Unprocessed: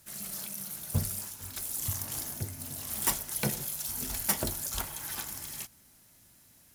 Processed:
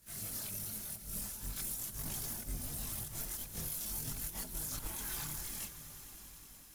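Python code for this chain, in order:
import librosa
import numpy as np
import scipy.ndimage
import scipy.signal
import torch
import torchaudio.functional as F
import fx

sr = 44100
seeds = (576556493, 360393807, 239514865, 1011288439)

y = fx.octave_divider(x, sr, octaves=1, level_db=4.0)
y = fx.high_shelf(y, sr, hz=11000.0, db=2.5)
y = fx.over_compress(y, sr, threshold_db=-35.0, ratio=-0.5)
y = fx.echo_swell(y, sr, ms=92, loudest=5, wet_db=-18.0)
y = fx.chorus_voices(y, sr, voices=6, hz=0.44, base_ms=23, depth_ms=4.7, mix_pct=60)
y = y * 10.0 ** (-3.5 / 20.0)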